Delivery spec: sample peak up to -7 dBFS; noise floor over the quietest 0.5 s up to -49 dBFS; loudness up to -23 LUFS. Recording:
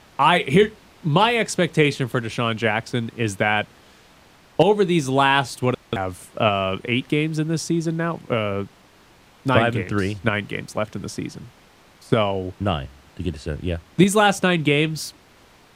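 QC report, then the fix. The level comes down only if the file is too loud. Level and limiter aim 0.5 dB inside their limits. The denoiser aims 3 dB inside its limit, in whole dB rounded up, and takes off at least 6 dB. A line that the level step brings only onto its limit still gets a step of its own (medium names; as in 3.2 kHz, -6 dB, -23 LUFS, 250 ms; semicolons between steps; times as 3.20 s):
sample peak -2.5 dBFS: fail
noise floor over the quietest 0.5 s -52 dBFS: pass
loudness -21.5 LUFS: fail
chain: trim -2 dB; peak limiter -7.5 dBFS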